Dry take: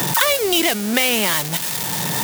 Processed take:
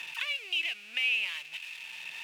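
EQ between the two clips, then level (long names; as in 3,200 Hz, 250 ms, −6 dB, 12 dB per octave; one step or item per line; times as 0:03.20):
resonant band-pass 2,600 Hz, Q 12
0.0 dB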